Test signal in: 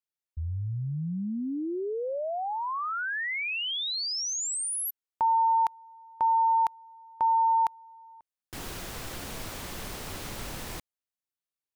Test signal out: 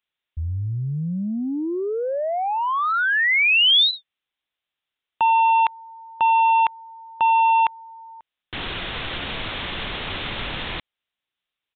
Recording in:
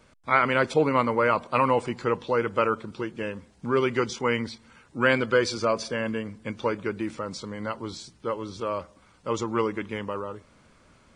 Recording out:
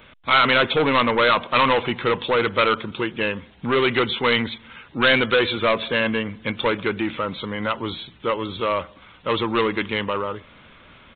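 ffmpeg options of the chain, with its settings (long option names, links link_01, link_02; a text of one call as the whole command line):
ffmpeg -i in.wav -af "aresample=8000,asoftclip=type=tanh:threshold=-22dB,aresample=44100,crystalizer=i=6.5:c=0,volume=6.5dB" out.wav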